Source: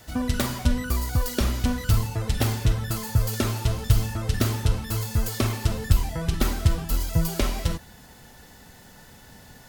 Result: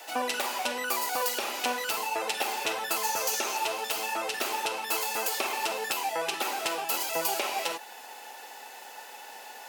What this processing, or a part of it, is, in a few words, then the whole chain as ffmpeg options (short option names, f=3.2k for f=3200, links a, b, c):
laptop speaker: -filter_complex "[0:a]asettb=1/sr,asplit=3[a][b][c];[a]atrim=end=3.044[d];[b]atrim=start=3.04:end=3.57,asetpts=PTS-STARTPTS,afade=t=in:d=0.004:c=qsin,afade=t=out:st=0.526:d=0.004:c=qsin,equalizer=f=6.1k:t=o:w=0.32:g=9[e];[c]atrim=start=3.566[f];[d][e]acrossfade=d=0.004:c1=hsin:c2=qsin[g];[g][f]acrossfade=d=0.004:c1=qsin:c2=hsin,highpass=f=410:w=0.5412,highpass=f=410:w=1.3066,equalizer=f=830:t=o:w=0.3:g=11,equalizer=f=2.6k:t=o:w=0.28:g=9.5,alimiter=limit=-19dB:level=0:latency=1:release=279,volume=3.5dB"